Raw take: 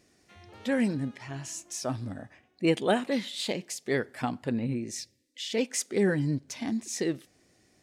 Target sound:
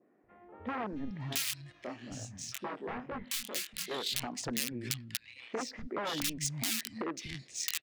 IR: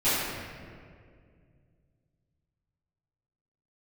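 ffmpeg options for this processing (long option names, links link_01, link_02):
-filter_complex "[0:a]aresample=22050,aresample=44100,adynamicsmooth=sensitivity=4:basefreq=2800,aeval=exprs='(mod(11.2*val(0)+1,2)-1)/11.2':channel_layout=same,highshelf=frequency=3300:gain=7.5,bandreject=frequency=1500:width=29,acrossover=split=180|1700[link_01][link_02][link_03];[link_01]adelay=240[link_04];[link_03]adelay=670[link_05];[link_04][link_02][link_05]amix=inputs=3:normalize=0,acompressor=threshold=-36dB:ratio=3,asettb=1/sr,asplit=3[link_06][link_07][link_08];[link_06]atrim=end=1.724[link_09];[link_07]atrim=start=1.72:end=3.91,asetpts=PTS-STARTPTS,afade=type=in:duration=0.004:curve=qsin,afade=type=out:start_time=2.186:duration=0.004:curve=qsin,flanger=delay=19.5:depth=6.4:speed=2.1[link_10];[link_08]atrim=start=3.906[link_11];[link_09][link_10]acrossfade=duration=0.004:curve1=hsin:curve2=qsin[link_12];[link_12][link_11]acrossfade=duration=0.004:curve1=qsin:curve2=hsin,adynamicequalizer=threshold=0.00224:dfrequency=1500:dqfactor=0.7:tfrequency=1500:tqfactor=0.7:attack=5:release=100:ratio=0.375:range=2:mode=boostabove:tftype=highshelf"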